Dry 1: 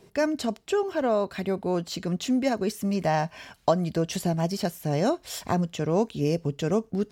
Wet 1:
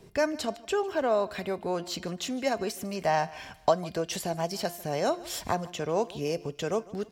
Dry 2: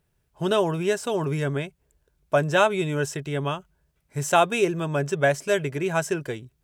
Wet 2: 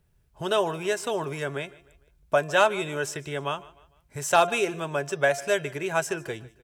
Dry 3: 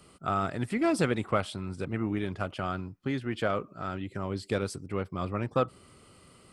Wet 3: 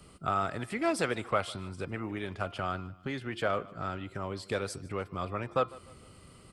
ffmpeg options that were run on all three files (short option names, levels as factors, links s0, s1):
-filter_complex "[0:a]lowshelf=f=120:g=8.5,bandreject=f=348.1:t=h:w=4,bandreject=f=696.2:t=h:w=4,bandreject=f=1044.3:t=h:w=4,bandreject=f=1392.4:t=h:w=4,bandreject=f=1740.5:t=h:w=4,bandreject=f=2088.6:t=h:w=4,bandreject=f=2436.7:t=h:w=4,bandreject=f=2784.8:t=h:w=4,bandreject=f=3132.9:t=h:w=4,bandreject=f=3481:t=h:w=4,bandreject=f=3829.1:t=h:w=4,bandreject=f=4177.2:t=h:w=4,bandreject=f=4525.3:t=h:w=4,bandreject=f=4873.4:t=h:w=4,bandreject=f=5221.5:t=h:w=4,bandreject=f=5569.6:t=h:w=4,bandreject=f=5917.7:t=h:w=4,acrossover=split=420[s0][s1];[s0]acompressor=threshold=0.0126:ratio=6[s2];[s1]aeval=exprs='clip(val(0),-1,0.251)':c=same[s3];[s2][s3]amix=inputs=2:normalize=0,aecho=1:1:151|302|453:0.0891|0.0365|0.015"